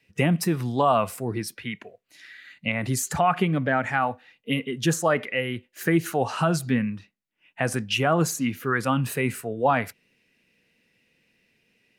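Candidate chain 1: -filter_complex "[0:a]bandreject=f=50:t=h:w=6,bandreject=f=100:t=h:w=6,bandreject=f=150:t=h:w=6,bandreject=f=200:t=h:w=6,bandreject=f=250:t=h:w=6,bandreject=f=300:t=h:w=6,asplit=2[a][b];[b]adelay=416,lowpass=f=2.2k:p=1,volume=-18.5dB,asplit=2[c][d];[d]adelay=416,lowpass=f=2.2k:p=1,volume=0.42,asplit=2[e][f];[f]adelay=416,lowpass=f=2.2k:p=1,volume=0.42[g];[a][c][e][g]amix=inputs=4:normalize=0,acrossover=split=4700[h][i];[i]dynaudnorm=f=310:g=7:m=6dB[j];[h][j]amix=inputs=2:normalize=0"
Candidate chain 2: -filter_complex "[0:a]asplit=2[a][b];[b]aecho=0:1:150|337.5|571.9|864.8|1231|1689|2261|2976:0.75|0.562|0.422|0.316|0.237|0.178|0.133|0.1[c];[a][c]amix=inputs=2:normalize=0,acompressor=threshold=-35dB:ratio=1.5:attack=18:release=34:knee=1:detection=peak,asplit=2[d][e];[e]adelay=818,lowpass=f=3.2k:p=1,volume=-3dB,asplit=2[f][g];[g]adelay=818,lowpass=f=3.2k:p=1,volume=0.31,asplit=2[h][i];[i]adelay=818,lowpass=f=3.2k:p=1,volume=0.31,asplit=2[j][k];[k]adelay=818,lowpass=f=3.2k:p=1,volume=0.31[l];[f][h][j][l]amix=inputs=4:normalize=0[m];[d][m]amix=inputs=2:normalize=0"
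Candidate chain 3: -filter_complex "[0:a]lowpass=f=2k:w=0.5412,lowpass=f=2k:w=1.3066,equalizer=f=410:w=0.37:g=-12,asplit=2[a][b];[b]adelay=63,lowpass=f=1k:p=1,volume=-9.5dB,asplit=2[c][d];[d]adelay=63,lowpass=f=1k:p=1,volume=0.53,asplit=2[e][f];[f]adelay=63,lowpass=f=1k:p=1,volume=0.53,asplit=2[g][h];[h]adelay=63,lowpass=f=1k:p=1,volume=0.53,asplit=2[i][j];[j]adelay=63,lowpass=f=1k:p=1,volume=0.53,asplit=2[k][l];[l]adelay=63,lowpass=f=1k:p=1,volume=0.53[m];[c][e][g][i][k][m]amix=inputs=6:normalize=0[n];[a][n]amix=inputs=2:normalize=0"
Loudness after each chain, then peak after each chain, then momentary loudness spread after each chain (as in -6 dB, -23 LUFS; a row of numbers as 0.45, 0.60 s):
-24.5, -25.5, -33.5 LUFS; -9.0, -10.5, -16.0 dBFS; 17, 5, 10 LU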